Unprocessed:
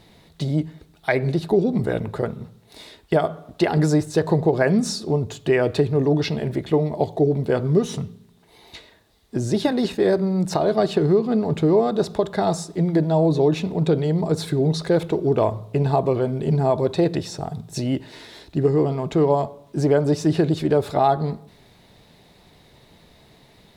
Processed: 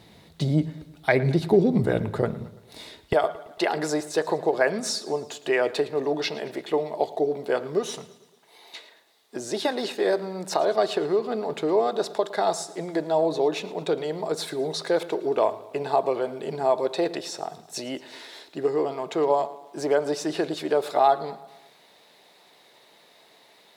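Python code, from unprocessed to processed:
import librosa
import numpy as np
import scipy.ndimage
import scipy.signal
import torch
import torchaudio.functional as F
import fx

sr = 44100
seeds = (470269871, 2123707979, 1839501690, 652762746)

y = fx.highpass(x, sr, hz=fx.steps((0.0, 58.0), (3.13, 490.0)), slope=12)
y = fx.echo_feedback(y, sr, ms=112, feedback_pct=55, wet_db=-19.0)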